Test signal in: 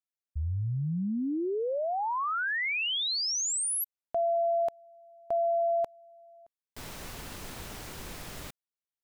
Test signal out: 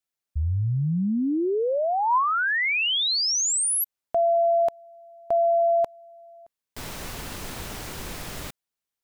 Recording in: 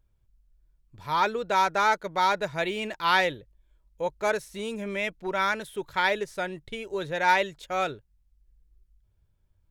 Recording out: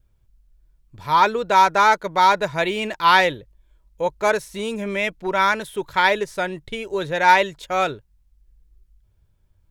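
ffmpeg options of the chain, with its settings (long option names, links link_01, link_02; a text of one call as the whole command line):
ffmpeg -i in.wav -af "adynamicequalizer=threshold=0.00794:dfrequency=1000:dqfactor=6.8:tfrequency=1000:tqfactor=6.8:attack=5:release=100:ratio=0.375:range=2.5:mode=boostabove:tftype=bell,volume=6.5dB" out.wav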